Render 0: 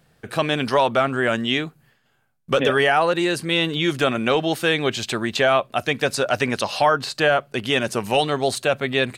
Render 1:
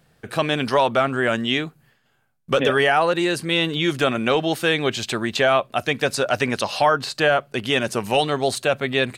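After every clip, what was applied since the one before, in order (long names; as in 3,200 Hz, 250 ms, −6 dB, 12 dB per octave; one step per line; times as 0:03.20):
no processing that can be heard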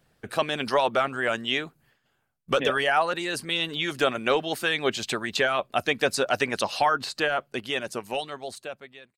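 fade-out on the ending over 2.36 s
harmonic and percussive parts rebalanced harmonic −10 dB
level −2 dB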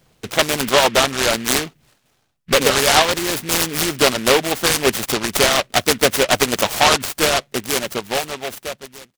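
short delay modulated by noise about 2,100 Hz, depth 0.16 ms
level +8.5 dB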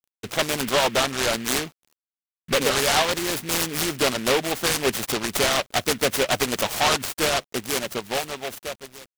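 bit-depth reduction 8 bits, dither none
soft clipping −9 dBFS, distortion −15 dB
level −4 dB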